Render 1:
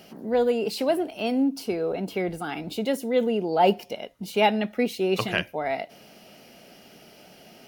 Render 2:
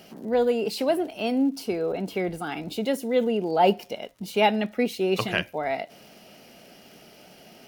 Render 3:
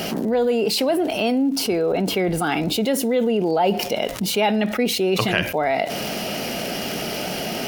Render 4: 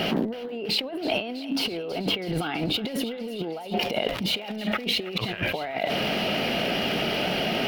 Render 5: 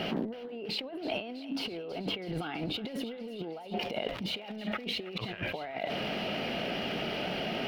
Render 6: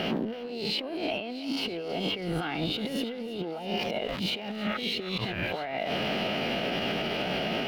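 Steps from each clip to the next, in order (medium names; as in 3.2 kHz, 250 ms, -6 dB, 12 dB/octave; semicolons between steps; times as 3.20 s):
crackle 97 per s -43 dBFS
level flattener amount 70%; trim -1 dB
resonant high shelf 4.8 kHz -12 dB, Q 1.5; compressor with a negative ratio -24 dBFS, ratio -0.5; thinning echo 325 ms, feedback 77%, high-pass 790 Hz, level -15 dB; trim -3 dB
treble shelf 6.6 kHz -10 dB; trim -7.5 dB
reverse spectral sustain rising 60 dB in 0.48 s; peak limiter -24.5 dBFS, peak gain reduction 6.5 dB; trim +4 dB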